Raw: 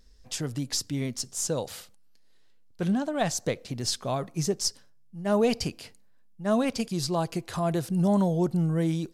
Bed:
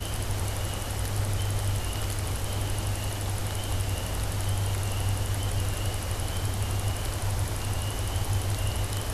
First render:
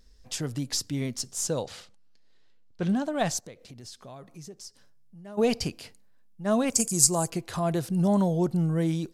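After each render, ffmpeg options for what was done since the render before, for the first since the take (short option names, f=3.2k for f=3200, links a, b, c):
-filter_complex "[0:a]asettb=1/sr,asplit=3[a][b][c];[a]atrim=end=1.624[d];[b]atrim=start=1.62:end=2.89,asetpts=PTS-STARTPTS,afade=t=in:d=0.004:c=qsin,afade=t=out:st=1.266:d=0.004:c=qsin,lowpass=6.2k[e];[c]atrim=start=2.886[f];[d][e]acrossfade=d=0.004:c1=hsin:c2=qsin[g];[g][f]acrossfade=d=0.004:c1=qsin:c2=hsin,asplit=3[h][i][j];[h]afade=t=out:st=3.39:d=0.02[k];[i]acompressor=threshold=-49dB:ratio=2.5:attack=3.2:release=140:knee=1:detection=peak,afade=t=in:st=3.39:d=0.02,afade=t=out:st=5.37:d=0.02[l];[j]afade=t=in:st=5.37:d=0.02[m];[k][l][m]amix=inputs=3:normalize=0,asettb=1/sr,asplit=3[n][o][p];[n]atrim=end=6.704[q];[o]atrim=start=6.7:end=7.3,asetpts=PTS-STARTPTS,afade=t=in:d=0.004:c=qsin,afade=t=out:st=0.596:d=0.004:c=qsin,highshelf=f=5.3k:t=q:w=3:g=13.5[r];[p]atrim=start=7.296[s];[q][r]acrossfade=d=0.004:c1=hsin:c2=qsin[t];[t][s]acrossfade=d=0.004:c1=qsin:c2=hsin"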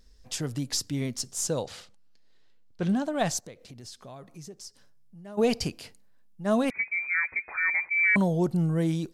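-filter_complex "[0:a]asettb=1/sr,asplit=3[a][b][c];[a]atrim=end=6.704[d];[b]atrim=start=6.7:end=8.16,asetpts=PTS-STARTPTS,afade=t=in:d=0.004:c=qsin,afade=t=out:st=1.456:d=0.004:c=qsin,lowpass=f=2.1k:t=q:w=0.5098,lowpass=f=2.1k:t=q:w=0.6013,lowpass=f=2.1k:t=q:w=0.9,lowpass=f=2.1k:t=q:w=2.563,afreqshift=-2500[e];[c]atrim=start=8.156[f];[d][e]acrossfade=d=0.004:c1=hsin:c2=qsin[g];[g][f]acrossfade=d=0.004:c1=qsin:c2=hsin"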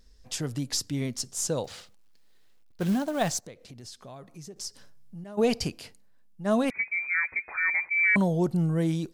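-filter_complex "[0:a]asettb=1/sr,asplit=3[a][b][c];[a]atrim=end=1.644[d];[b]atrim=start=1.64:end=3.46,asetpts=PTS-STARTPTS,afade=t=in:d=0.004:c=qsin,afade=t=out:st=1.816:d=0.004:c=qsin,acrusher=bits=5:mode=log:mix=0:aa=0.000001[e];[c]atrim=start=3.456[f];[d][e]acrossfade=d=0.004:c1=hsin:c2=qsin[g];[g][f]acrossfade=d=0.004:c1=qsin:c2=hsin,asplit=3[h][i][j];[h]atrim=end=4.562[k];[i]atrim=start=4.558:end=5.242,asetpts=PTS-STARTPTS,volume=7dB[l];[j]atrim=start=5.238[m];[k][l]acrossfade=d=0.004:c1=hsin:c2=hsin[n];[n][m]acrossfade=d=0.004:c1=hsin:c2=hsin"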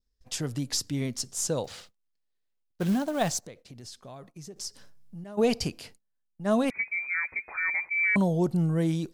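-af "agate=range=-22dB:threshold=-50dB:ratio=16:detection=peak,adynamicequalizer=threshold=0.00891:dfrequency=1700:dqfactor=1.8:tfrequency=1700:tqfactor=1.8:attack=5:release=100:ratio=0.375:range=3:mode=cutabove:tftype=bell"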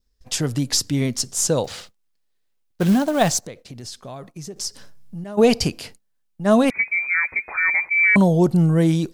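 -af "volume=9dB"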